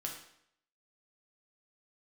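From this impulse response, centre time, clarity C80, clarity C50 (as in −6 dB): 30 ms, 8.5 dB, 5.5 dB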